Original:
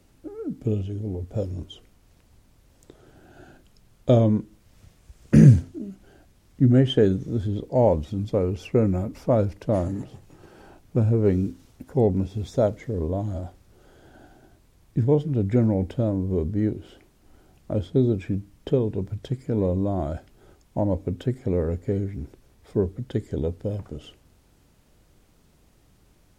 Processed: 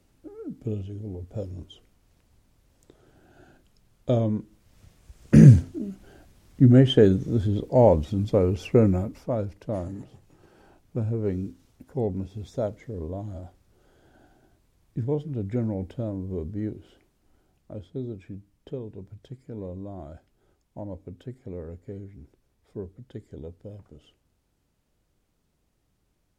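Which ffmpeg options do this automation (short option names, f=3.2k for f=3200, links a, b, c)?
-af "volume=2dB,afade=t=in:st=4.35:d=1.35:silence=0.421697,afade=t=out:st=8.85:d=0.4:silence=0.354813,afade=t=out:st=16.77:d=1.03:silence=0.501187"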